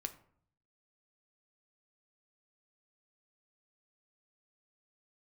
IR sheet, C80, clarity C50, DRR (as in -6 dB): 18.0 dB, 14.0 dB, 7.5 dB